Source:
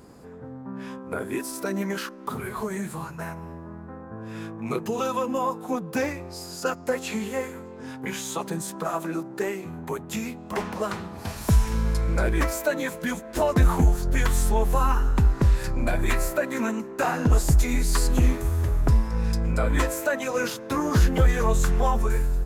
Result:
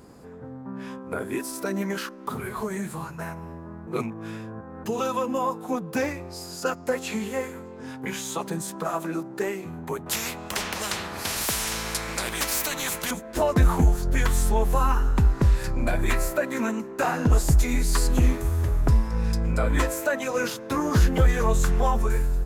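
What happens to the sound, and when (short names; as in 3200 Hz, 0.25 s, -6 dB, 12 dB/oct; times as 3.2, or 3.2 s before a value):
3.87–4.85 reverse
10.06–13.11 spectral compressor 4:1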